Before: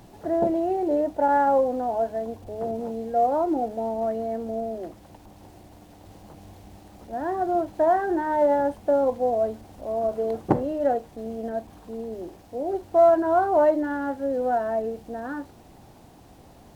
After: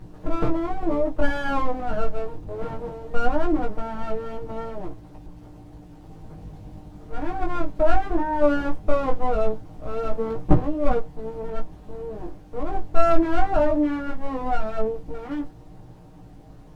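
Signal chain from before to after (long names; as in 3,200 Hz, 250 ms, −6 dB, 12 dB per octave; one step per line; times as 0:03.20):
lower of the sound and its delayed copy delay 6.5 ms
high-shelf EQ 2,500 Hz +8 dB
chorus effect 0.19 Hz, delay 17 ms, depth 3.9 ms
spectral tilt −4 dB per octave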